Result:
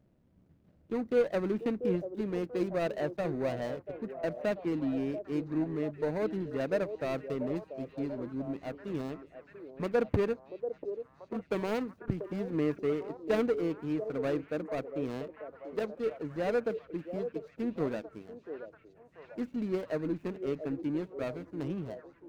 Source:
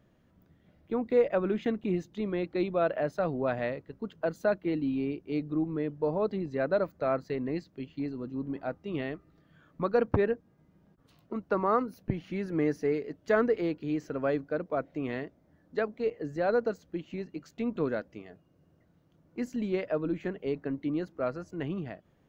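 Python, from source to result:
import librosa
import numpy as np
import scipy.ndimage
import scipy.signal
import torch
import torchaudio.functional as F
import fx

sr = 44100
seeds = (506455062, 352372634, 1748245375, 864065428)

y = scipy.ndimage.median_filter(x, 41, mode='constant')
y = fx.echo_stepped(y, sr, ms=688, hz=470.0, octaves=0.7, feedback_pct=70, wet_db=-7.0)
y = F.gain(torch.from_numpy(y), -1.5).numpy()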